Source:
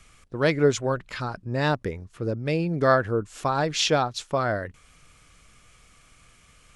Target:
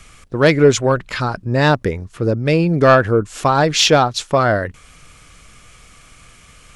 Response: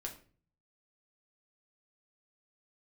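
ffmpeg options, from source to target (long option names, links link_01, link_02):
-af "asoftclip=type=tanh:threshold=-7.5dB,acontrast=79,volume=3.5dB"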